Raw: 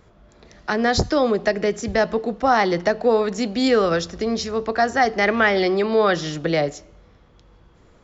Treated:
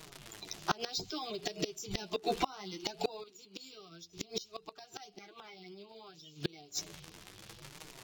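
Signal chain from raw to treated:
spectral magnitudes quantised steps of 30 dB
high shelf with overshoot 1,700 Hz +12 dB, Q 1.5
phaser with its sweep stopped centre 360 Hz, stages 8
surface crackle 160 per second −31 dBFS
flanger 0.64 Hz, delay 6.2 ms, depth 6.7 ms, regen +10%
gate with flip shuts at −20 dBFS, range −30 dB
0:00.71–0:03.24: upward compression, threshold −27 dBFS
linearly interpolated sample-rate reduction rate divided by 2×
level +2.5 dB

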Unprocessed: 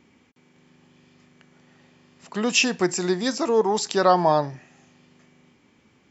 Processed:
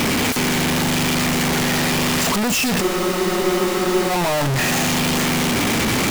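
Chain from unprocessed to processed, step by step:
sign of each sample alone
frozen spectrum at 0:02.83, 1.26 s
level +7 dB

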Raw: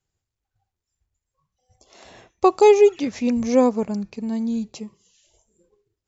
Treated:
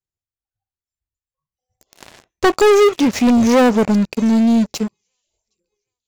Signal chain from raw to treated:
delay with a high-pass on its return 765 ms, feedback 47%, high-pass 3,600 Hz, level −17 dB
leveller curve on the samples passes 5
level −4.5 dB

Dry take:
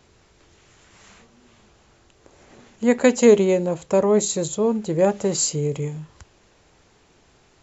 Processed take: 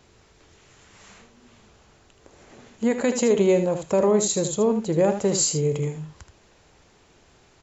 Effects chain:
brickwall limiter −11.5 dBFS, peak gain reduction 9 dB
single-tap delay 77 ms −9 dB

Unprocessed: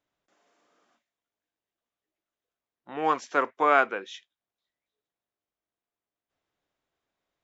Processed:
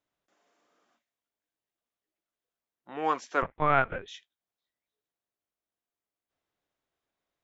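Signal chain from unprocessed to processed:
0:03.42–0:04.08: linear-prediction vocoder at 8 kHz pitch kept
level −3 dB

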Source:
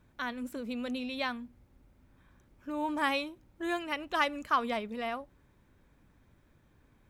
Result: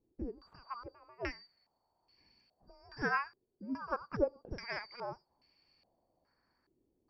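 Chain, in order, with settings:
band-splitting scrambler in four parts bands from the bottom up 2341
low-pass on a step sequencer 2.4 Hz 380–2,700 Hz
level −3 dB

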